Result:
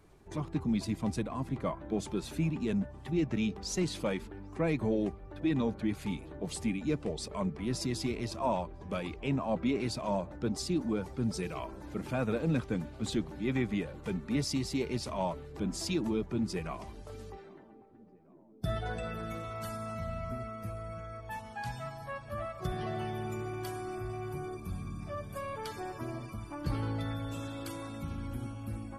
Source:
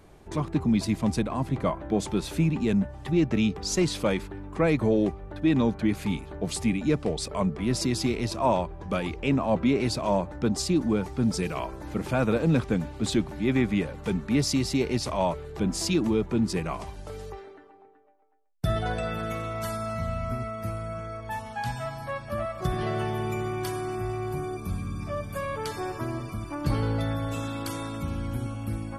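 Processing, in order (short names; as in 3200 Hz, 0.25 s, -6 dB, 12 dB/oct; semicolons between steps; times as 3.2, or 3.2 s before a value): bin magnitudes rounded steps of 15 dB; tape echo 0.797 s, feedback 89%, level -23 dB, low-pass 1000 Hz; gain -7 dB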